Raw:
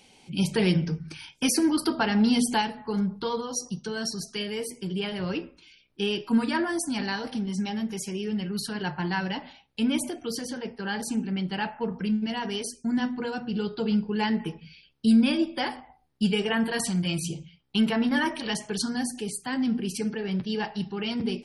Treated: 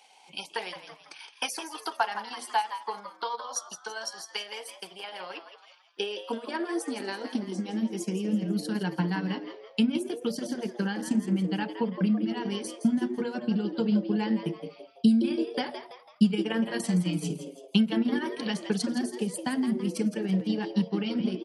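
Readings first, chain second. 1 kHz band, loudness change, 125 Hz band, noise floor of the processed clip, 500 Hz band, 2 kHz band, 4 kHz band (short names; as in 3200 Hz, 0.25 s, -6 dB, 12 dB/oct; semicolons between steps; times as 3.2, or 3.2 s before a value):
-1.5 dB, -2.0 dB, -1.5 dB, -56 dBFS, -2.0 dB, -5.0 dB, -4.5 dB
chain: compressor 2:1, threshold -32 dBFS, peak gain reduction 9 dB; transient shaper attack +8 dB, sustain -8 dB; high-pass sweep 790 Hz -> 180 Hz, 5.18–8.45; on a send: frequency-shifting echo 0.166 s, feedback 42%, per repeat +120 Hz, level -10.5 dB; on the sum: gain -3 dB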